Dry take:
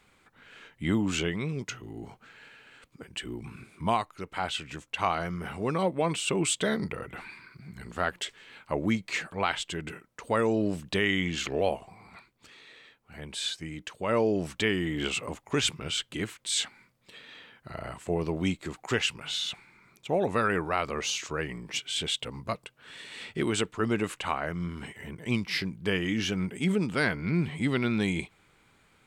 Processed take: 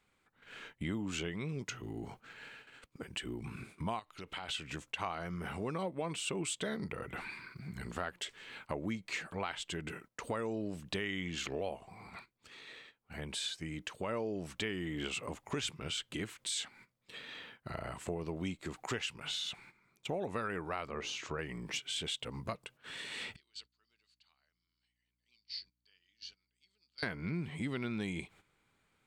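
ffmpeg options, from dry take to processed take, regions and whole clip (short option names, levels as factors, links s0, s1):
-filter_complex "[0:a]asettb=1/sr,asplit=3[s0][s1][s2];[s0]atrim=end=3.994[s3];[s1]atrim=start=3.99:end=4.49,asetpts=PTS-STARTPTS,afade=t=in:d=0.004:c=qsin,afade=t=out:st=0.496:d=0.004:c=qsin,acompressor=threshold=0.00794:ratio=4:attack=3.2:release=140:knee=1:detection=peak,equalizer=f=3200:t=o:w=0.87:g=10[s4];[s2]atrim=start=4.486[s5];[s3][s4]acrossfade=d=0.004:c1=hsin:c2=qsin[s6];[s6][s5]acrossfade=d=0.004:c1=qsin:c2=hsin,asettb=1/sr,asplit=3[s7][s8][s9];[s7]atrim=end=20.884[s10];[s8]atrim=start=20.88:end=21.39,asetpts=PTS-STARTPTS,afade=t=in:d=0.004:c=qsin,afade=t=out:st=0.506:d=0.004:c=qsin,lowpass=f=2300:p=1,bandreject=f=60:t=h:w=6,bandreject=f=120:t=h:w=6,bandreject=f=180:t=h:w=6,bandreject=f=240:t=h:w=6,bandreject=f=300:t=h:w=6,bandreject=f=360:t=h:w=6,bandreject=f=420:t=h:w=6,bandreject=f=480:t=h:w=6,bandreject=f=540:t=h:w=6[s11];[s9]atrim=start=21.386[s12];[s10][s11]acrossfade=d=0.004:c1=hsin:c2=qsin[s13];[s13][s12]acrossfade=d=0.004:c1=qsin:c2=hsin,asettb=1/sr,asplit=3[s14][s15][s16];[s14]atrim=end=23.364[s17];[s15]atrim=start=23.36:end=27.03,asetpts=PTS-STARTPTS,afade=t=in:d=0.004:c=qsin,afade=t=out:st=3.666:d=0.004:c=qsin,bandpass=f=4500:t=q:w=16,aeval=exprs='val(0)+0.000178*(sin(2*PI*60*n/s)+sin(2*PI*2*60*n/s)/2+sin(2*PI*3*60*n/s)/3+sin(2*PI*4*60*n/s)/4+sin(2*PI*5*60*n/s)/5)':c=same[s18];[s16]atrim=start=27.026[s19];[s17][s18]acrossfade=d=0.004:c1=hsin:c2=qsin[s20];[s20][s19]acrossfade=d=0.004:c1=qsin:c2=hsin,agate=range=0.224:threshold=0.00224:ratio=16:detection=peak,acompressor=threshold=0.0112:ratio=3,volume=1.12"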